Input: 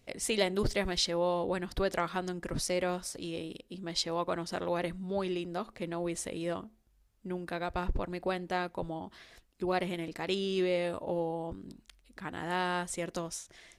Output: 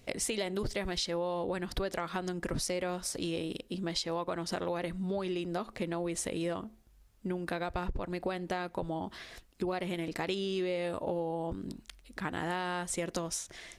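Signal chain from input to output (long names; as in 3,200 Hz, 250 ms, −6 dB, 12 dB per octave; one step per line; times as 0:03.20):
in parallel at −0.5 dB: brickwall limiter −23 dBFS, peak gain reduction 8.5 dB
on the sum: downward compressor, threshold −32 dBFS, peak gain reduction 12 dB
level +1 dB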